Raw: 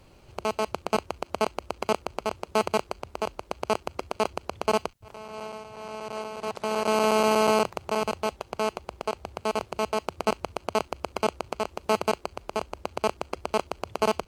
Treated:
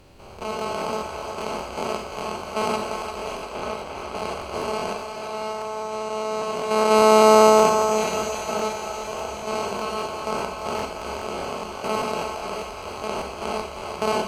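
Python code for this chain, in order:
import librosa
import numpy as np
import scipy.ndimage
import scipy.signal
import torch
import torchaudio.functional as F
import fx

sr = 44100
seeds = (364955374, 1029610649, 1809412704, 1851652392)

y = fx.spec_steps(x, sr, hold_ms=200)
y = fx.lowpass(y, sr, hz=4300.0, slope=12, at=(3.38, 4.15))
y = fx.echo_thinned(y, sr, ms=346, feedback_pct=73, hz=420.0, wet_db=-6.5)
y = fx.rev_schroeder(y, sr, rt60_s=0.67, comb_ms=30, drr_db=3.5)
y = fx.buffer_crackle(y, sr, first_s=0.37, period_s=0.2, block=1024, kind='repeat')
y = y * librosa.db_to_amplitude(4.5)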